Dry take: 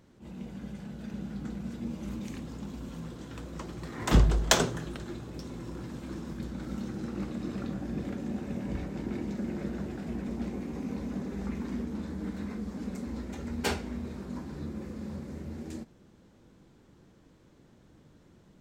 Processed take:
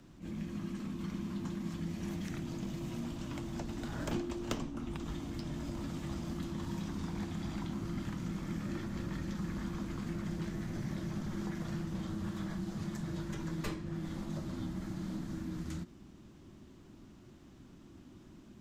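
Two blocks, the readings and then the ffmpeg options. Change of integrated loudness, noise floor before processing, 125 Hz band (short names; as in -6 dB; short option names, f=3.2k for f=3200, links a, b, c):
-5.0 dB, -60 dBFS, -3.0 dB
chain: -filter_complex "[0:a]acrossover=split=140|870|3500[a][b][c][d];[a]acompressor=threshold=-48dB:ratio=4[e];[b]acompressor=threshold=-42dB:ratio=4[f];[c]acompressor=threshold=-51dB:ratio=4[g];[d]acompressor=threshold=-57dB:ratio=4[h];[e][f][g][h]amix=inputs=4:normalize=0,afreqshift=-400,volume=3.5dB"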